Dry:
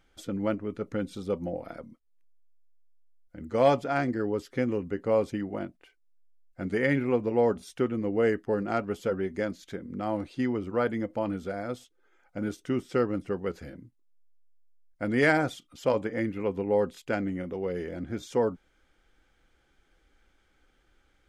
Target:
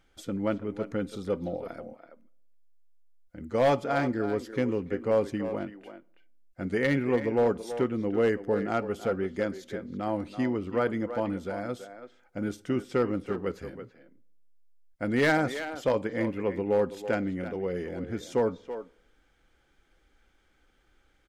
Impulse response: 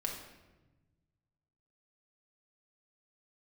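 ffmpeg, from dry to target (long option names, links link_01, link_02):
-filter_complex "[0:a]asplit=2[link_01][link_02];[link_02]adelay=330,highpass=300,lowpass=3400,asoftclip=type=hard:threshold=-19dB,volume=-10dB[link_03];[link_01][link_03]amix=inputs=2:normalize=0,asplit=2[link_04][link_05];[1:a]atrim=start_sample=2205,asetrate=83790,aresample=44100,adelay=54[link_06];[link_05][link_06]afir=irnorm=-1:irlink=0,volume=-20dB[link_07];[link_04][link_07]amix=inputs=2:normalize=0,volume=17dB,asoftclip=hard,volume=-17dB"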